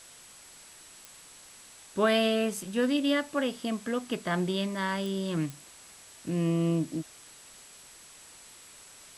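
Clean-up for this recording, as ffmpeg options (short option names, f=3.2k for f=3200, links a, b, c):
-af "adeclick=t=4,bandreject=f=7.8k:w=30,afwtdn=0.0032"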